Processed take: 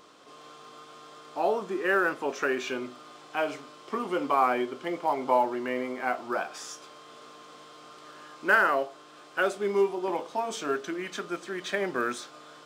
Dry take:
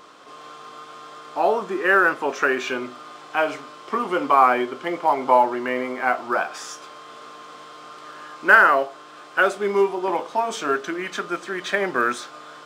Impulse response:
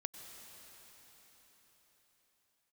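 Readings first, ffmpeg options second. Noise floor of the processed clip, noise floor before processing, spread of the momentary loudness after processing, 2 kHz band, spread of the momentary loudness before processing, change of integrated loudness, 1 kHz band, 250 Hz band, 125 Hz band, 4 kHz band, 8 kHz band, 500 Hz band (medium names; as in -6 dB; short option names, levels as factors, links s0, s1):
-51 dBFS, -43 dBFS, 23 LU, -9.0 dB, 23 LU, -7.5 dB, -8.5 dB, -4.5 dB, -4.0 dB, -5.5 dB, -4.5 dB, -5.5 dB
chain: -af "equalizer=f=1300:w=0.68:g=-5.5,volume=0.631"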